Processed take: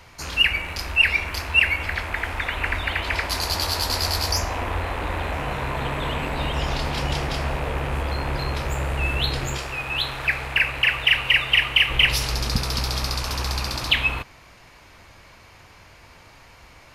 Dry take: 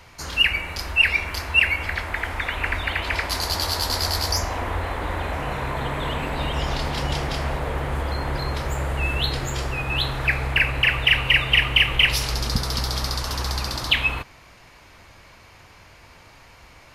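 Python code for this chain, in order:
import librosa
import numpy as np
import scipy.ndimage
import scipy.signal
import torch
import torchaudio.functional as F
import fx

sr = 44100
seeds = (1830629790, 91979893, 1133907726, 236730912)

y = fx.rattle_buzz(x, sr, strikes_db=-35.0, level_db=-25.0)
y = fx.low_shelf(y, sr, hz=430.0, db=-9.0, at=(9.57, 11.9))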